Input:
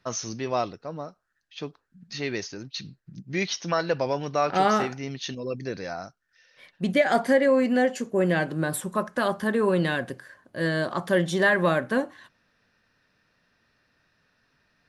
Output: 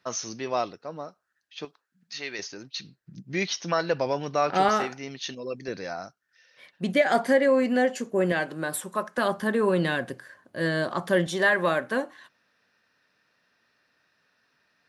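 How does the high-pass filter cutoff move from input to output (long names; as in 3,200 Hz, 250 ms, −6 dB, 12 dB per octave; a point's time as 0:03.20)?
high-pass filter 6 dB per octave
280 Hz
from 0:01.65 1,100 Hz
from 0:02.39 340 Hz
from 0:03.01 120 Hz
from 0:04.69 350 Hz
from 0:05.68 170 Hz
from 0:08.32 470 Hz
from 0:09.18 110 Hz
from 0:11.27 370 Hz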